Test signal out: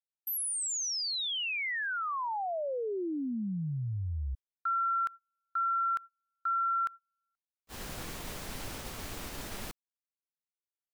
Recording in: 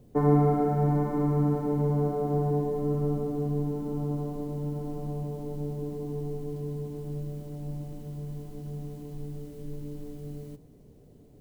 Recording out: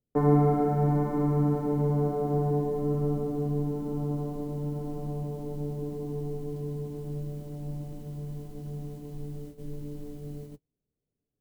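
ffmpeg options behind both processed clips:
ffmpeg -i in.wav -af "agate=range=-33dB:threshold=-41dB:ratio=16:detection=peak" out.wav

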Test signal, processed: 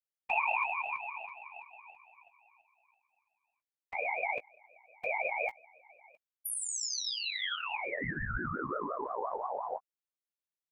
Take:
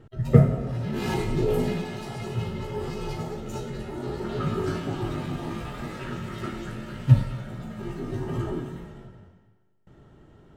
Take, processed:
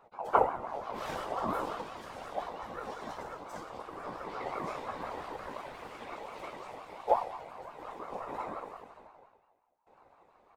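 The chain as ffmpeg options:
ffmpeg -i in.wav -filter_complex "[0:a]afftfilt=real='hypot(re,im)*cos(2*PI*random(0))':imag='hypot(re,im)*sin(2*PI*random(1))':win_size=512:overlap=0.75,asplit=2[link_01][link_02];[link_02]adelay=17,volume=-9.5dB[link_03];[link_01][link_03]amix=inputs=2:normalize=0,aeval=exprs='val(0)*sin(2*PI*790*n/s+790*0.2/5.7*sin(2*PI*5.7*n/s))':channel_layout=same,volume=-1.5dB" out.wav

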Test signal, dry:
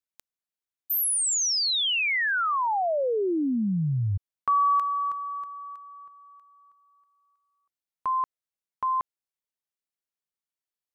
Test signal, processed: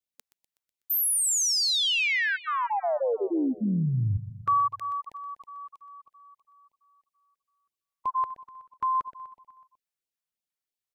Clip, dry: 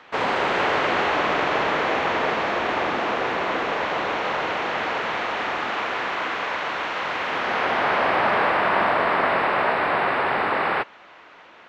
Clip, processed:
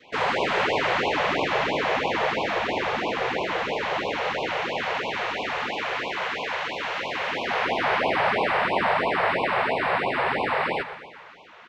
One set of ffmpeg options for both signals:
ffmpeg -i in.wav -filter_complex "[0:a]adynamicequalizer=threshold=0.0141:dfrequency=1300:dqfactor=1.9:tfrequency=1300:tqfactor=1.9:attack=5:release=100:ratio=0.375:range=2:mode=cutabove:tftype=bell,asplit=2[link_01][link_02];[link_02]aecho=0:1:124|248|372|496|620|744:0.211|0.125|0.0736|0.0434|0.0256|0.0151[link_03];[link_01][link_03]amix=inputs=2:normalize=0,afftfilt=real='re*(1-between(b*sr/1024,240*pow(1600/240,0.5+0.5*sin(2*PI*3*pts/sr))/1.41,240*pow(1600/240,0.5+0.5*sin(2*PI*3*pts/sr))*1.41))':imag='im*(1-between(b*sr/1024,240*pow(1600/240,0.5+0.5*sin(2*PI*3*pts/sr))/1.41,240*pow(1600/240,0.5+0.5*sin(2*PI*3*pts/sr))*1.41))':win_size=1024:overlap=0.75" out.wav

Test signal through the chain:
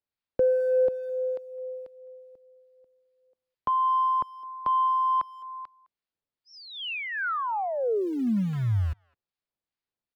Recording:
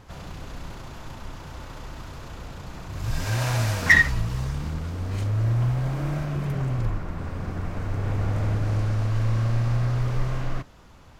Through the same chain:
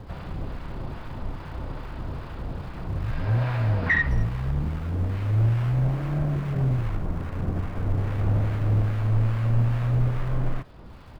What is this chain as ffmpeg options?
ffmpeg -i in.wav -filter_complex "[0:a]tiltshelf=frequency=800:gain=3.5,aresample=11025,aresample=44100,asplit=2[link_01][link_02];[link_02]acompressor=threshold=-35dB:ratio=10,volume=0dB[link_03];[link_01][link_03]amix=inputs=2:normalize=0,asoftclip=type=tanh:threshold=-12.5dB,acrossover=split=220[link_04][link_05];[link_04]acrusher=bits=4:mode=log:mix=0:aa=0.000001[link_06];[link_06][link_05]amix=inputs=2:normalize=0,acrossover=split=940[link_07][link_08];[link_07]aeval=exprs='val(0)*(1-0.5/2+0.5/2*cos(2*PI*2.4*n/s))':channel_layout=same[link_09];[link_08]aeval=exprs='val(0)*(1-0.5/2-0.5/2*cos(2*PI*2.4*n/s))':channel_layout=same[link_10];[link_09][link_10]amix=inputs=2:normalize=0,acrossover=split=2900[link_11][link_12];[link_12]acompressor=threshold=-58dB:ratio=4:attack=1:release=60[link_13];[link_11][link_13]amix=inputs=2:normalize=0,asplit=2[link_14][link_15];[link_15]adelay=210,highpass=300,lowpass=3400,asoftclip=type=hard:threshold=-22.5dB,volume=-22dB[link_16];[link_14][link_16]amix=inputs=2:normalize=0" out.wav

